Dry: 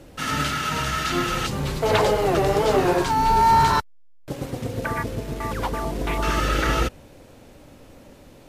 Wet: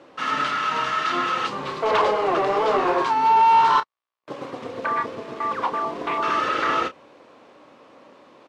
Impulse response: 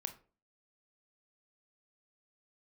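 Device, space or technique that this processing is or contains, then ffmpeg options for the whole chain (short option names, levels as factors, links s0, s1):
intercom: -filter_complex "[0:a]highpass=330,lowpass=3800,equalizer=f=1100:t=o:w=0.34:g=11,asoftclip=type=tanh:threshold=0.251,asplit=2[s0][s1];[s1]adelay=30,volume=0.282[s2];[s0][s2]amix=inputs=2:normalize=0"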